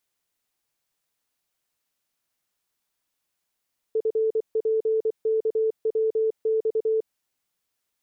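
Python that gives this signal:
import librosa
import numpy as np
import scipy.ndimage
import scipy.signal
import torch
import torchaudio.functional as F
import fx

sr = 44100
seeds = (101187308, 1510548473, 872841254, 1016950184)

y = fx.morse(sr, text='FPKWX', wpm=24, hz=441.0, level_db=-19.5)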